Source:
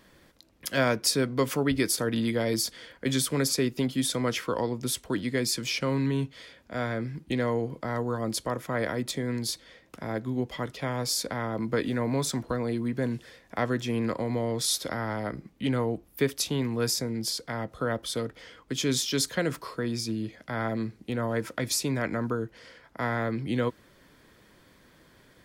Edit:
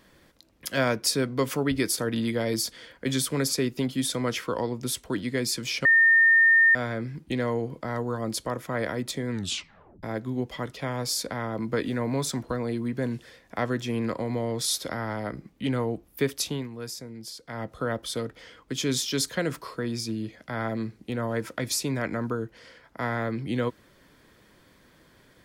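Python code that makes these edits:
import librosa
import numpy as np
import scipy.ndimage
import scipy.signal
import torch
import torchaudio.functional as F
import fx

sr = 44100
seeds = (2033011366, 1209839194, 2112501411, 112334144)

y = fx.edit(x, sr, fx.bleep(start_s=5.85, length_s=0.9, hz=1820.0, db=-14.5),
    fx.tape_stop(start_s=9.31, length_s=0.72),
    fx.fade_down_up(start_s=16.47, length_s=1.17, db=-9.5, fade_s=0.22), tone=tone)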